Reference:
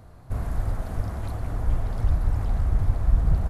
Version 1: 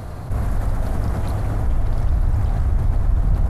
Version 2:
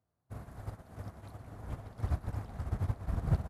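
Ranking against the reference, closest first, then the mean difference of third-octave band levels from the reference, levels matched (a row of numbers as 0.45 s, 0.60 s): 1, 2; 2.5 dB, 4.5 dB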